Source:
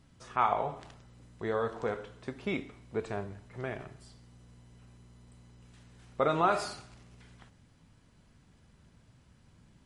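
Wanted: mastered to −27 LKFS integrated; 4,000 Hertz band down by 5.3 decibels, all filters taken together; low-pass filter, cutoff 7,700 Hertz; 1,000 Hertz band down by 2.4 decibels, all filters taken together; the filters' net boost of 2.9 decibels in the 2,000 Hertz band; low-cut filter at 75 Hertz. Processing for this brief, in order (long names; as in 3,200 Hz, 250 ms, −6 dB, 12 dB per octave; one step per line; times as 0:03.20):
high-pass filter 75 Hz
low-pass filter 7,700 Hz
parametric band 1,000 Hz −5.5 dB
parametric band 2,000 Hz +8 dB
parametric band 4,000 Hz −8.5 dB
level +7.5 dB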